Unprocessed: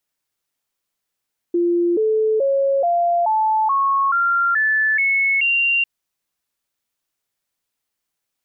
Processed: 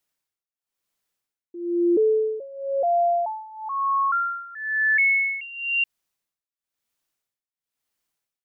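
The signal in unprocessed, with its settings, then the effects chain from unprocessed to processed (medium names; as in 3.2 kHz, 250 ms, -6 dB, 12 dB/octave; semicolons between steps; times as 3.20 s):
stepped sine 346 Hz up, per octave 3, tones 10, 0.43 s, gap 0.00 s -14.5 dBFS
dynamic bell 1 kHz, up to -4 dB, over -29 dBFS, Q 1.3; tremolo 1 Hz, depth 91%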